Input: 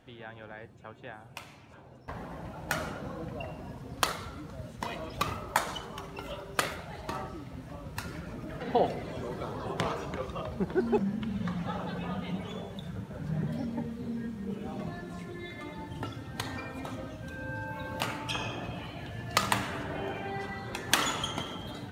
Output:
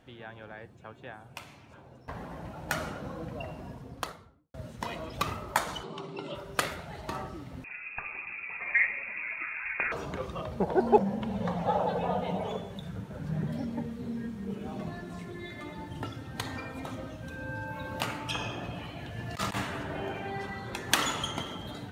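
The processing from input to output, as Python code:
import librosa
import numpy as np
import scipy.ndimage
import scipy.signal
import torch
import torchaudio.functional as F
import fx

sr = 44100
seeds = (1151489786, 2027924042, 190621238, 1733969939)

y = fx.studio_fade_out(x, sr, start_s=3.58, length_s=0.96)
y = fx.cabinet(y, sr, low_hz=140.0, low_slope=24, high_hz=7500.0, hz=(150.0, 350.0, 1700.0, 4000.0, 6200.0), db=(5, 10, -10, 5, -9), at=(5.83, 6.35))
y = fx.freq_invert(y, sr, carrier_hz=2600, at=(7.64, 9.92))
y = fx.band_shelf(y, sr, hz=660.0, db=12.0, octaves=1.3, at=(10.6, 12.57))
y = fx.over_compress(y, sr, threshold_db=-31.0, ratio=-0.5, at=(19.16, 19.61), fade=0.02)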